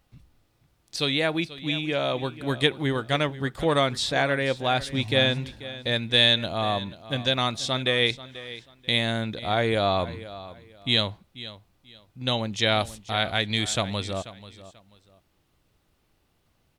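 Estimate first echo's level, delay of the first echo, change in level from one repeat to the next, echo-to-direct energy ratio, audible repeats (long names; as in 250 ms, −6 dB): −16.0 dB, 487 ms, −12.0 dB, −16.0 dB, 2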